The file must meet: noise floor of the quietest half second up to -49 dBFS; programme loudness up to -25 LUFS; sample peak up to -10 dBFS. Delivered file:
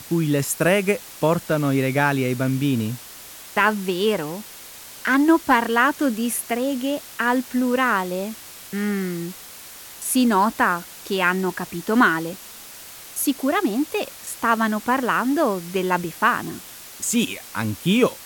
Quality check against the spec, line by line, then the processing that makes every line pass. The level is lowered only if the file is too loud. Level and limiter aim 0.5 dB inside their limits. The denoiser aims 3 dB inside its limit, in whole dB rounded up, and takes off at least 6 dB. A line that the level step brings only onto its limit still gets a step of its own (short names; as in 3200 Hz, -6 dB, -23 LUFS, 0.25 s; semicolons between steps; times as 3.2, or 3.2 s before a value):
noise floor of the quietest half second -41 dBFS: fail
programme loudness -21.5 LUFS: fail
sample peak -5.0 dBFS: fail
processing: denoiser 7 dB, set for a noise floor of -41 dBFS; gain -4 dB; limiter -10.5 dBFS